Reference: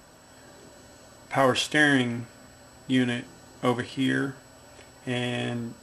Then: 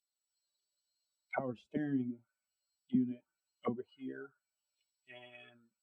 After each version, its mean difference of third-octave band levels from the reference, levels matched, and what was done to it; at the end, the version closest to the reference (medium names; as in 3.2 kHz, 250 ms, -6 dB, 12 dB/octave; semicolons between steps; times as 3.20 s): 16.0 dB: expander on every frequency bin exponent 2; bass shelf 130 Hz -4 dB; auto-wah 200–3500 Hz, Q 3.9, down, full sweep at -24 dBFS; trim +1.5 dB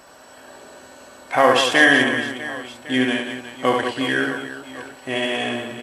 5.0 dB: tone controls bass -14 dB, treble -4 dB; reverse bouncing-ball echo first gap 70 ms, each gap 1.6×, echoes 5; trim +7 dB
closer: second